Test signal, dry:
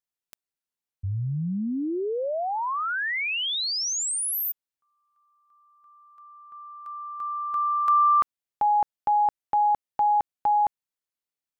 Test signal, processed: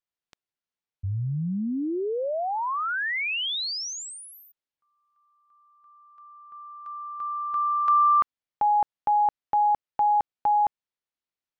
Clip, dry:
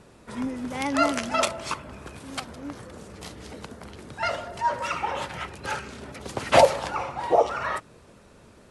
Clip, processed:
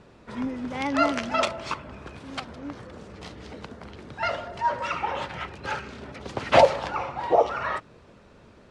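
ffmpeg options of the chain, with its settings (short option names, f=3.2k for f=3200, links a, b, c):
-af "lowpass=4.7k"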